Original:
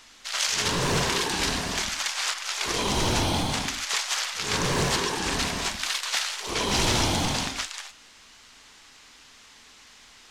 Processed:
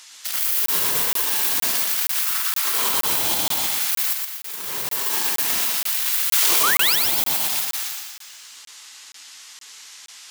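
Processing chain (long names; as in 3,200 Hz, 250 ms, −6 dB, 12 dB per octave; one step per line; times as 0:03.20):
stylus tracing distortion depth 0.39 ms
RIAA equalisation recording
gate on every frequency bin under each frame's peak −20 dB strong
convolution reverb, pre-delay 3 ms, DRR 7.5 dB
brickwall limiter −9.5 dBFS, peak gain reduction 13 dB
0:02.25–0:03.07: parametric band 1,300 Hz +7.5 dB 0.78 octaves
0:04.13–0:05.26: fade in
0:06.63–0:06.96: sound drawn into the spectrogram rise 1,100–5,900 Hz −23 dBFS
feedback echo with a high-pass in the loop 119 ms, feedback 50%, high-pass 170 Hz, level −4 dB
regular buffer underruns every 0.47 s, samples 1,024, zero, from 0:00.66
0:06.32–0:06.90: envelope flattener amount 100%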